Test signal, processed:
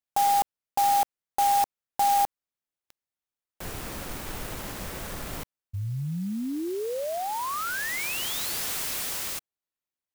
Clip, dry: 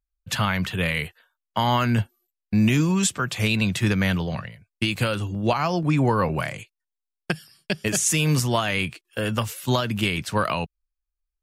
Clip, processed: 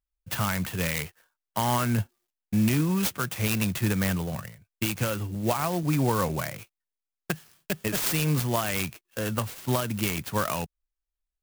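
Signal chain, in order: clock jitter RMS 0.059 ms; gain -4 dB

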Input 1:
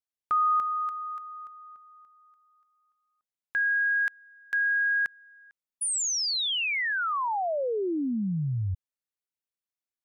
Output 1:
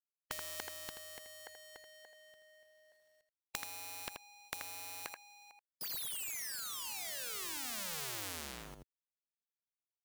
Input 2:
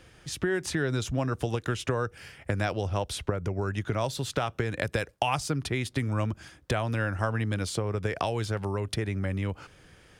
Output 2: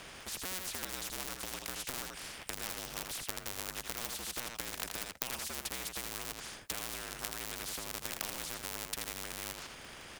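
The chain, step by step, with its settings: cycle switcher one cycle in 2, inverted; companded quantiser 8-bit; on a send: echo 81 ms -10.5 dB; on the sum: spectral compressor 4:1; gain +2.5 dB

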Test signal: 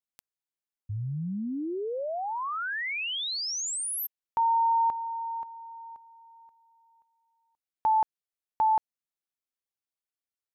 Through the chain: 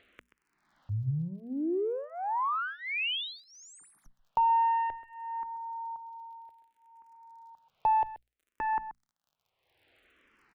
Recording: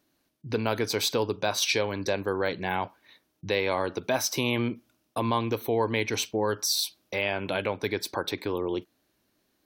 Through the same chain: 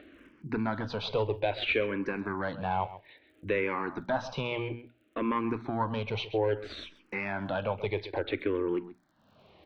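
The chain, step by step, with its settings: one diode to ground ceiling -20.5 dBFS; LPF 3000 Hz 24 dB/oct; on a send: echo 0.131 s -16 dB; on the sum: upward compressor, threshold -43 dBFS; crackle 47/s -60 dBFS; notches 60/120/180/240 Hz; in parallel at -2.5 dB: compressor, threshold -34 dBFS; on the sum: endless phaser -0.6 Hz

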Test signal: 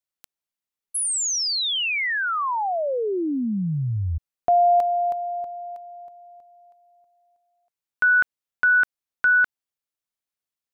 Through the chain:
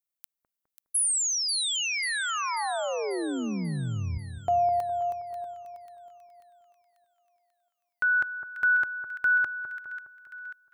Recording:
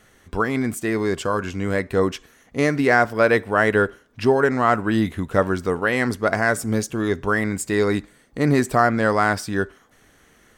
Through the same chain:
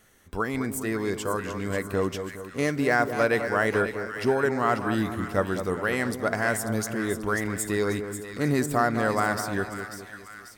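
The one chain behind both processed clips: high shelf 9500 Hz +12 dB; on a send: split-band echo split 1400 Hz, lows 0.206 s, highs 0.54 s, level -8.5 dB; on the sum: gain -6.5 dB

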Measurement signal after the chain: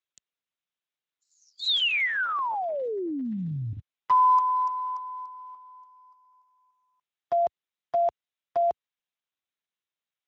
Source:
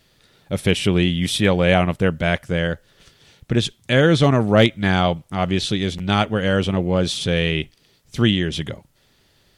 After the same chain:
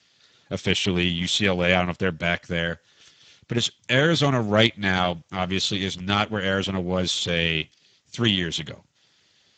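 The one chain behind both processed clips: tilt shelf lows -5 dB, about 1300 Hz; gain -2 dB; Speex 13 kbps 16000 Hz

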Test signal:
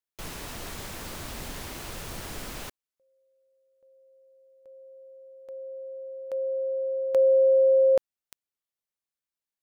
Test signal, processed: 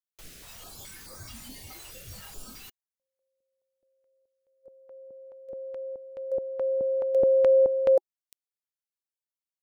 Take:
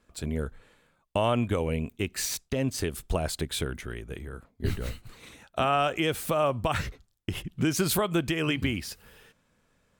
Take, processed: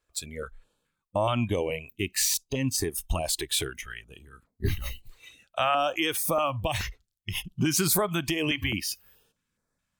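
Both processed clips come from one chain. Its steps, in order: spectral noise reduction 15 dB; high shelf 2900 Hz +6 dB; in parallel at 0 dB: limiter -20.5 dBFS; on the sum: stepped notch 4.7 Hz 210–2900 Hz; gain -3 dB

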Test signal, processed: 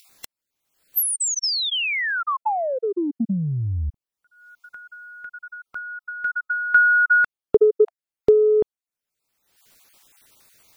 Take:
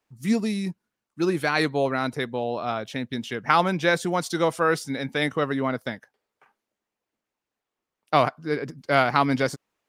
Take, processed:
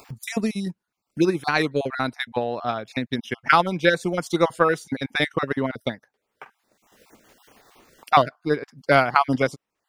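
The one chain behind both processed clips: random spectral dropouts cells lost 24%; transient shaper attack +7 dB, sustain -4 dB; upward compressor, threshold -29 dBFS

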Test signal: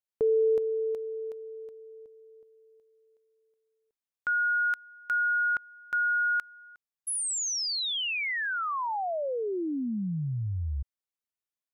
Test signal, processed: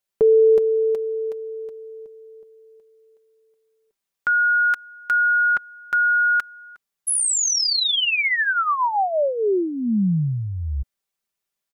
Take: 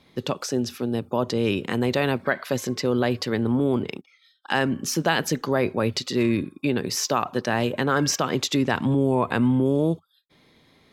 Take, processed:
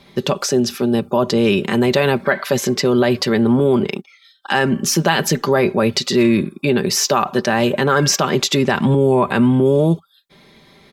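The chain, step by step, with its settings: bell 260 Hz -2.5 dB 0.23 oct; comb 5.1 ms, depth 48%; in parallel at +2 dB: limiter -17.5 dBFS; on the sum: gain +2 dB

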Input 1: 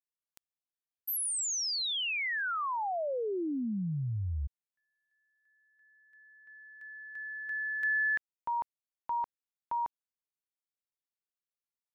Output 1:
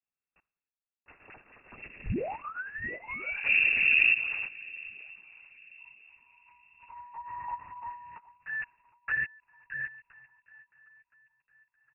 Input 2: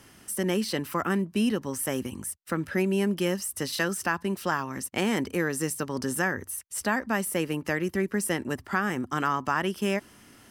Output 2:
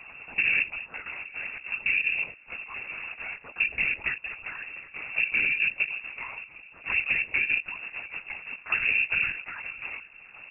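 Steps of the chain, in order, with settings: half-waves squared off; low shelf 220 Hz +4.5 dB; comb 7.3 ms, depth 37%; compressor 6:1, threshold -25 dBFS; soft clip -19.5 dBFS; de-hum 377.5 Hz, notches 11; chopper 0.58 Hz, depth 65%, duty 40%; envelope flanger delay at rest 8.1 ms, full sweep at -28 dBFS; swung echo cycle 1.014 s, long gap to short 3:1, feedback 33%, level -21.5 dB; LPC vocoder at 8 kHz whisper; inverted band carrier 2700 Hz; gain +4.5 dB

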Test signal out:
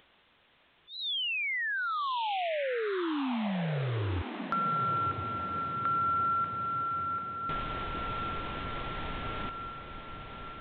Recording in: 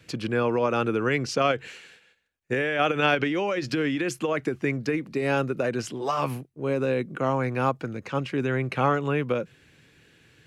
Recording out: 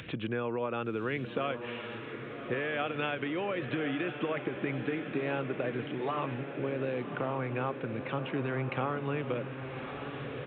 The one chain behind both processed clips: compressor 4:1, threshold -28 dBFS; downsampling 8000 Hz; upward compressor, threshold -33 dBFS; diffused feedback echo 1.113 s, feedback 61%, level -8 dB; gain -2.5 dB

